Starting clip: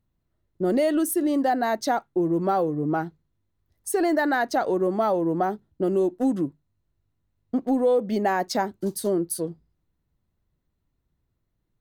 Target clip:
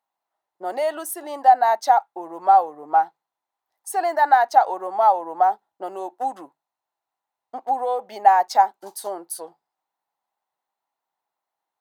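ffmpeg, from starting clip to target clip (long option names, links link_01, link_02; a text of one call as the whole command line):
ffmpeg -i in.wav -af "highpass=frequency=820:width_type=q:width=6,volume=-1.5dB" out.wav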